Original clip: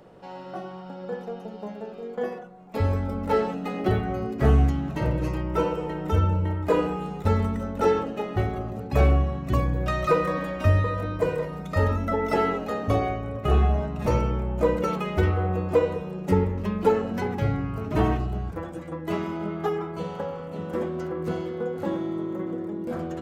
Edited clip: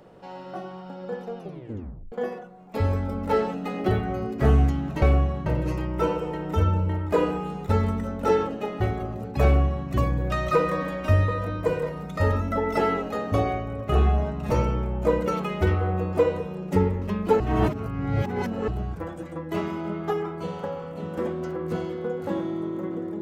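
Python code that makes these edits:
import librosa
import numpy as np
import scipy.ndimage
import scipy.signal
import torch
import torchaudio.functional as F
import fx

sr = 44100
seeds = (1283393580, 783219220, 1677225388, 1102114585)

y = fx.edit(x, sr, fx.tape_stop(start_s=1.38, length_s=0.74),
    fx.duplicate(start_s=9.0, length_s=0.44, to_s=5.02),
    fx.reverse_span(start_s=16.96, length_s=1.28), tone=tone)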